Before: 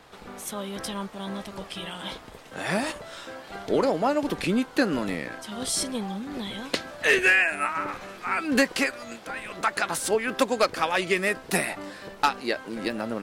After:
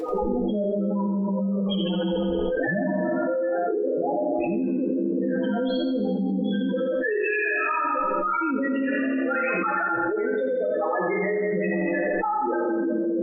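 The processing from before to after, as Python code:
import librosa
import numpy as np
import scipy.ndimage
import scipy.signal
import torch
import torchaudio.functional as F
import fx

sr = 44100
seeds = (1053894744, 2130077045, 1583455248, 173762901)

y = scipy.signal.sosfilt(scipy.signal.butter(4, 3600.0, 'lowpass', fs=sr, output='sos'), x)
y = fx.small_body(y, sr, hz=(330.0, 480.0), ring_ms=65, db=6)
y = fx.spec_topn(y, sr, count=4)
y = fx.stiff_resonator(y, sr, f0_hz=62.0, decay_s=0.3, stiffness=0.008)
y = fx.echo_feedback(y, sr, ms=86, feedback_pct=51, wet_db=-7.5)
y = fx.rev_gated(y, sr, seeds[0], gate_ms=440, shape='falling', drr_db=0.0)
y = fx.env_flatten(y, sr, amount_pct=100)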